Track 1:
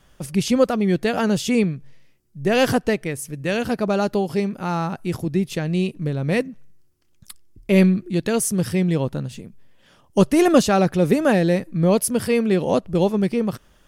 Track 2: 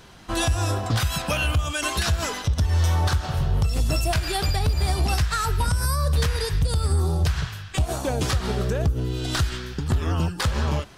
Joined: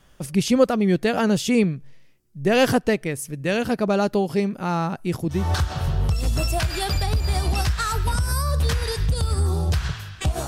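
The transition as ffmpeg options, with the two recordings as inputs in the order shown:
-filter_complex "[0:a]apad=whole_dur=10.47,atrim=end=10.47,atrim=end=5.52,asetpts=PTS-STARTPTS[a];[1:a]atrim=start=2.81:end=8,asetpts=PTS-STARTPTS[b];[a][b]acrossfade=d=0.24:c1=tri:c2=tri"

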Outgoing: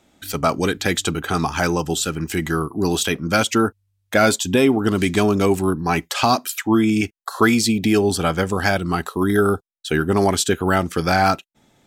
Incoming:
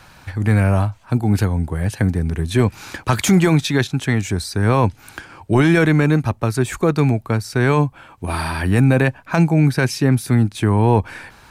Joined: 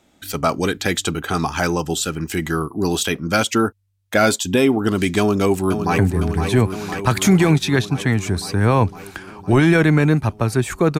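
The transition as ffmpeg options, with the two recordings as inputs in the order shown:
-filter_complex "[0:a]apad=whole_dur=10.99,atrim=end=10.99,atrim=end=5.982[a];[1:a]atrim=start=1.998:end=7.01[b];[a][b]acrossfade=d=0.004:c1=hsin:c2=hsin,asplit=2[c][d];[d]afade=t=in:st=5.19:d=0.01,afade=t=out:st=5.98:d=0.01,aecho=0:1:510|1020|1530|2040|2550|3060|3570|4080|4590|5100|5610|6120:0.421697|0.316272|0.237204|0.177903|0.133427|0.100071|0.0750529|0.0562897|0.0422173|0.0316629|0.0237472|0.0178104[e];[c][e]amix=inputs=2:normalize=0"

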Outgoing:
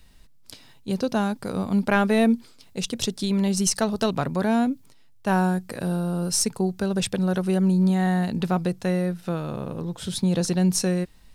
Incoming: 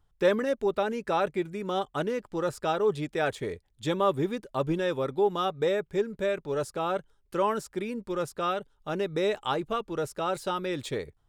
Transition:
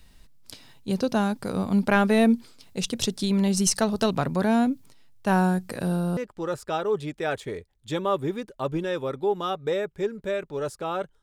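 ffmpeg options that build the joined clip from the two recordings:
-filter_complex "[0:a]apad=whole_dur=11.22,atrim=end=11.22,atrim=end=6.172[a];[1:a]atrim=start=2.118:end=7.17[b];[a][b]acrossfade=d=0.004:c1=hsin:c2=hsin"

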